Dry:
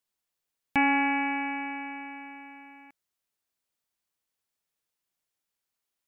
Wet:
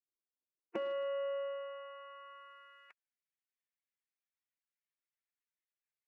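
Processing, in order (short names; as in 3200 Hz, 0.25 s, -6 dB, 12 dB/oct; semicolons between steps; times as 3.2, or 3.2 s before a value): spectral gate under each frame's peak -15 dB weak; one-sided clip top -37.5 dBFS; band-pass sweep 350 Hz -> 2000 Hz, 0.76–3.15; gain +15.5 dB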